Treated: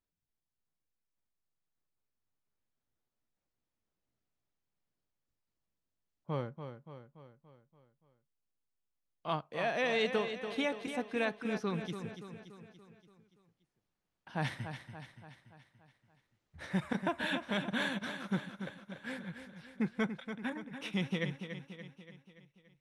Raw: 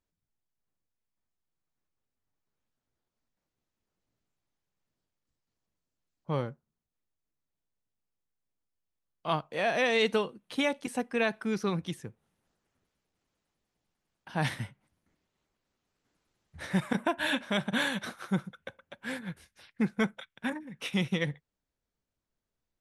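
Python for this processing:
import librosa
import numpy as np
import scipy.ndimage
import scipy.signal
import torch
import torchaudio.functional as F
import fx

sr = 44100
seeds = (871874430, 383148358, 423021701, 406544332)

p1 = fx.high_shelf(x, sr, hz=9100.0, db=-11.5)
p2 = p1 + fx.echo_feedback(p1, sr, ms=287, feedback_pct=54, wet_db=-9, dry=0)
y = p2 * 10.0 ** (-5.0 / 20.0)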